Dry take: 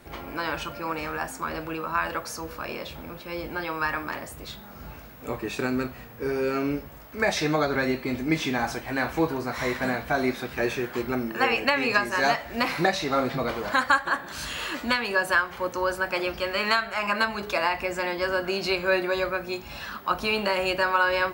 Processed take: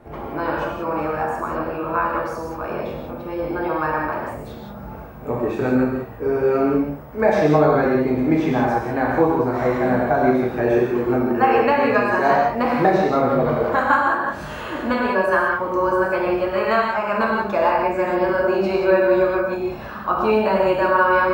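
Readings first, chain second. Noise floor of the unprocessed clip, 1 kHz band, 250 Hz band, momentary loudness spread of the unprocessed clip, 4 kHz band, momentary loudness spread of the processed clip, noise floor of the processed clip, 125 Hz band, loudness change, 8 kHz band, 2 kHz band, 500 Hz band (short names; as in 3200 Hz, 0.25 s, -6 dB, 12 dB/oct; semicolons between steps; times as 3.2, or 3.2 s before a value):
-44 dBFS, +8.0 dB, +9.0 dB, 12 LU, -7.0 dB, 11 LU, -34 dBFS, +8.5 dB, +7.0 dB, n/a, +1.5 dB, +10.0 dB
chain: EQ curve 220 Hz 0 dB, 720 Hz +3 dB, 4500 Hz -18 dB; non-linear reverb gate 0.21 s flat, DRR -2 dB; gain +4 dB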